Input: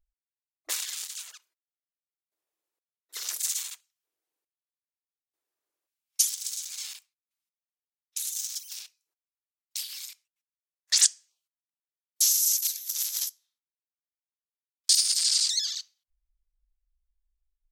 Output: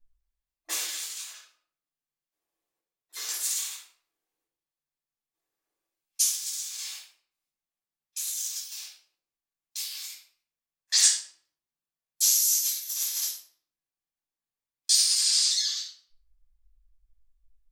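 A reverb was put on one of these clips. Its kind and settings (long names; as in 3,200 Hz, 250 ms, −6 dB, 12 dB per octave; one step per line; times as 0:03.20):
rectangular room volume 880 cubic metres, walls furnished, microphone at 8.7 metres
level −7.5 dB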